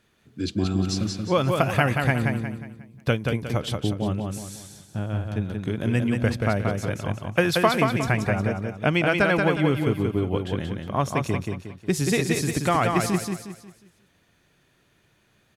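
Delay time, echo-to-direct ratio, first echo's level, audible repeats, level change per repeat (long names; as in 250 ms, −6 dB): 180 ms, −3.5 dB, −4.0 dB, 4, −8.5 dB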